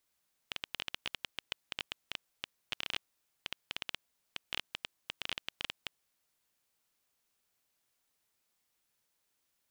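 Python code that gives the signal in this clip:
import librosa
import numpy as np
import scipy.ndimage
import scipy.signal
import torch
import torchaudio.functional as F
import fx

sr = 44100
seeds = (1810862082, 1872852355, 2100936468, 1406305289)

y = fx.geiger_clicks(sr, seeds[0], length_s=5.46, per_s=11.0, level_db=-17.5)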